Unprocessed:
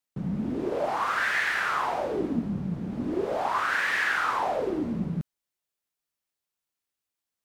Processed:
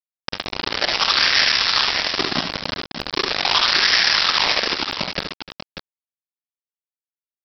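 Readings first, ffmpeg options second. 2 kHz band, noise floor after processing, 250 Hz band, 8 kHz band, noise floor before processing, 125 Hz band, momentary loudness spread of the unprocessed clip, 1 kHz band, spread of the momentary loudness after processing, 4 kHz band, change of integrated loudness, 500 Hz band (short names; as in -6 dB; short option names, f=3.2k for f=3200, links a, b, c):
+6.5 dB, under -85 dBFS, -3.5 dB, +14.5 dB, under -85 dBFS, -3.0 dB, 8 LU, +3.5 dB, 15 LU, +24.5 dB, +10.0 dB, 0.0 dB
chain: -af "bandreject=f=52.24:t=h:w=4,bandreject=f=104.48:t=h:w=4,bandreject=f=156.72:t=h:w=4,bandreject=f=208.96:t=h:w=4,bandreject=f=261.2:t=h:w=4,bandreject=f=313.44:t=h:w=4,bandreject=f=365.68:t=h:w=4,bandreject=f=417.92:t=h:w=4,bandreject=f=470.16:t=h:w=4,bandreject=f=522.4:t=h:w=4,bandreject=f=574.64:t=h:w=4,bandreject=f=626.88:t=h:w=4,bandreject=f=679.12:t=h:w=4,bandreject=f=731.36:t=h:w=4,bandreject=f=783.6:t=h:w=4,bandreject=f=835.84:t=h:w=4,bandreject=f=888.08:t=h:w=4,bandreject=f=940.32:t=h:w=4,bandreject=f=992.56:t=h:w=4,bandreject=f=1.0448k:t=h:w=4,bandreject=f=1.09704k:t=h:w=4,bandreject=f=1.14928k:t=h:w=4,bandreject=f=1.20152k:t=h:w=4,bandreject=f=1.25376k:t=h:w=4,bandreject=f=1.306k:t=h:w=4,bandreject=f=1.35824k:t=h:w=4,bandreject=f=1.41048k:t=h:w=4,bandreject=f=1.46272k:t=h:w=4,bandreject=f=1.51496k:t=h:w=4,bandreject=f=1.5672k:t=h:w=4,bandreject=f=1.61944k:t=h:w=4,bandreject=f=1.67168k:t=h:w=4,bandreject=f=1.72392k:t=h:w=4,bandreject=f=1.77616k:t=h:w=4,bandreject=f=1.8284k:t=h:w=4,bandreject=f=1.88064k:t=h:w=4,bandreject=f=1.93288k:t=h:w=4,adynamicequalizer=threshold=0.00631:dfrequency=1500:dqfactor=7.6:tfrequency=1500:tqfactor=7.6:attack=5:release=100:ratio=0.375:range=3:mode=cutabove:tftype=bell,aresample=11025,acrusher=bits=3:mix=0:aa=0.000001,aresample=44100,crystalizer=i=7.5:c=0,aecho=1:1:41|69|80|299|590:0.133|0.447|0.224|0.158|0.355"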